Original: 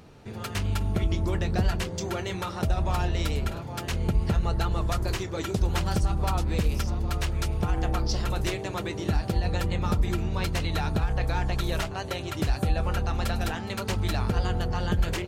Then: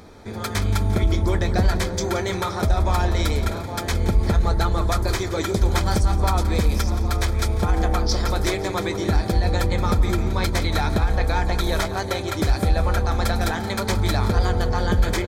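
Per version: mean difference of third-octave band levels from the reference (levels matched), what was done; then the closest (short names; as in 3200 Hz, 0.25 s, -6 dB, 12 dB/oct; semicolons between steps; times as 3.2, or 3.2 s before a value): 2.5 dB: bell 140 Hz -13.5 dB 0.38 oct; soft clip -15 dBFS, distortion -24 dB; Butterworth band-stop 2800 Hz, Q 5.4; feedback echo 0.174 s, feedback 53%, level -13.5 dB; gain +7.5 dB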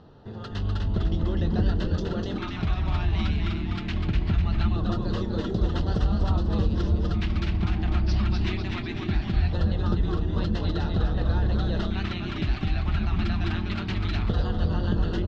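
7.0 dB: LPF 4100 Hz 24 dB/oct; dynamic EQ 900 Hz, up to -6 dB, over -45 dBFS, Q 0.97; frequency-shifting echo 0.249 s, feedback 54%, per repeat -130 Hz, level -3 dB; LFO notch square 0.21 Hz 500–2300 Hz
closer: first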